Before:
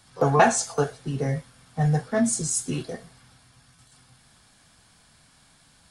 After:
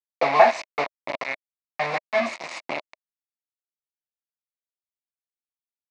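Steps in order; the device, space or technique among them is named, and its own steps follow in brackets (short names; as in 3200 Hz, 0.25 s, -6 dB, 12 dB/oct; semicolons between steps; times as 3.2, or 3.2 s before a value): 1.15–2.2 tilt shelf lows -4.5 dB, about 1200 Hz; hand-held game console (bit-crush 4-bit; speaker cabinet 420–4100 Hz, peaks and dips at 440 Hz -8 dB, 620 Hz +8 dB, 1000 Hz +5 dB, 1500 Hz -7 dB, 2200 Hz +10 dB, 3200 Hz -9 dB)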